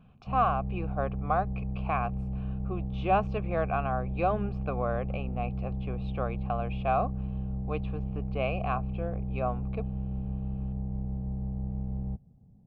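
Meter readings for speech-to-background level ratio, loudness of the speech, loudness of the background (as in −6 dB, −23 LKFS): 2.0 dB, −33.0 LKFS, −35.0 LKFS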